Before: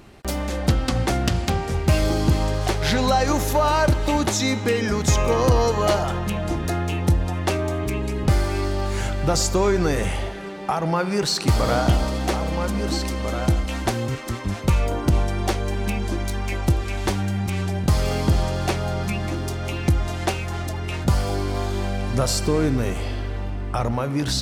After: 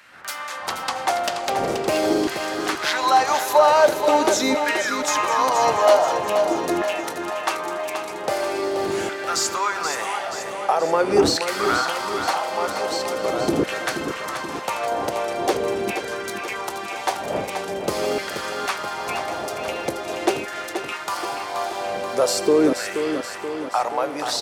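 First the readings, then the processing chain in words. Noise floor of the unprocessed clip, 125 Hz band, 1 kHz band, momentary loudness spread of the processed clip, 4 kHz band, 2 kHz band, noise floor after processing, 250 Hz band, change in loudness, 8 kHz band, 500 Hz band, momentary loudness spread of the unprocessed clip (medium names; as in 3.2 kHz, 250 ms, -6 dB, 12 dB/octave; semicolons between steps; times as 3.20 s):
-28 dBFS, -19.5 dB, +5.0 dB, 10 LU, +1.5 dB, +4.0 dB, -32 dBFS, -3.0 dB, +0.5 dB, +1.0 dB, +3.5 dB, 7 LU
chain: wind noise 82 Hz -16 dBFS; LFO high-pass saw down 0.44 Hz 330–1700 Hz; feedback delay 479 ms, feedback 57%, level -8 dB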